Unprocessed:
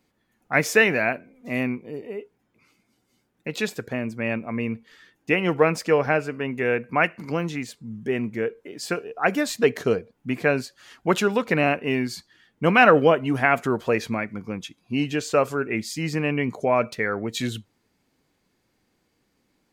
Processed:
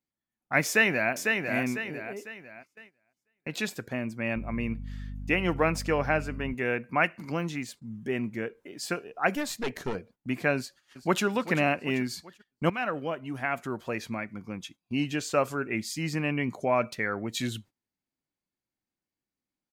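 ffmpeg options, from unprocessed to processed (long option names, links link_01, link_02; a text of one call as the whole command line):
ffmpeg -i in.wav -filter_complex "[0:a]asplit=2[link_01][link_02];[link_02]afade=type=in:start_time=0.66:duration=0.01,afade=type=out:start_time=1.13:duration=0.01,aecho=0:1:500|1000|1500|2000|2500:0.595662|0.238265|0.0953059|0.0381224|0.015249[link_03];[link_01][link_03]amix=inputs=2:normalize=0,asettb=1/sr,asplit=3[link_04][link_05][link_06];[link_04]atrim=end=4.364[link_07];[link_05]atrim=start=4.36:end=6.54,asetpts=PTS-STARTPTS,afade=type=in:duration=0.004:curve=qsin,afade=type=out:start_time=2.176:duration=0.004:curve=qsin,aeval=exprs='val(0)+0.0251*(sin(2*PI*50*n/s)+sin(2*PI*2*50*n/s)/2+sin(2*PI*3*50*n/s)/3+sin(2*PI*4*50*n/s)/4+sin(2*PI*5*50*n/s)/5)':channel_layout=same[link_08];[link_06]atrim=start=6.536[link_09];[link_07][link_08]acrossfade=duration=0.004:curve1=hsin:curve2=qsin[link_10];[link_10][link_09]acrossfade=duration=0.004:curve1=qsin:curve2=hsin,asettb=1/sr,asplit=3[link_11][link_12][link_13];[link_11]atrim=end=9.354[link_14];[link_12]atrim=start=9.35:end=9.95,asetpts=PTS-STARTPTS,afade=type=in:duration=0.004:curve=qsin,afade=type=out:start_time=0.596:duration=0.004:curve=qsin,aeval=exprs='(tanh(8.91*val(0)+0.55)-tanh(0.55))/8.91':channel_layout=same[link_15];[link_13]atrim=start=9.946[link_16];[link_14][link_15]acrossfade=duration=0.004:curve1=hsin:curve2=qsin[link_17];[link_17][link_16]acrossfade=duration=0.004:curve1=qsin:curve2=hsin,asplit=2[link_18][link_19];[link_19]afade=type=in:start_time=10.56:duration=0.01,afade=type=out:start_time=11.24:duration=0.01,aecho=0:1:390|780|1170|1560|1950|2340:0.199526|0.109739|0.0603567|0.0331962|0.0182579|0.0100418[link_20];[link_18][link_20]amix=inputs=2:normalize=0,asplit=2[link_21][link_22];[link_21]atrim=end=12.7,asetpts=PTS-STARTPTS,afade=type=out:start_time=12.696:duration=0.004:curve=hsin:silence=0.199526[link_23];[link_22]atrim=start=12.7,asetpts=PTS-STARTPTS,afade=type=in:duration=2.34:silence=0.199526[link_24];[link_23][link_24]concat=n=2:v=0:a=1,highshelf=frequency=6100:gain=3,agate=range=-19dB:threshold=-45dB:ratio=16:detection=peak,equalizer=frequency=450:width_type=o:width=0.25:gain=-7,volume=-4dB" out.wav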